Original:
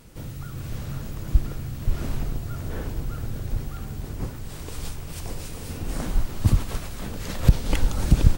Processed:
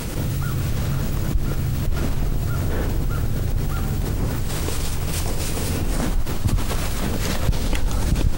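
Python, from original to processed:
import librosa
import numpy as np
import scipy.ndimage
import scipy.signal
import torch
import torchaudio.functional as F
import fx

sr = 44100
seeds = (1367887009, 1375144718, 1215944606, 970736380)

y = fx.env_flatten(x, sr, amount_pct=70)
y = y * 10.0 ** (-6.0 / 20.0)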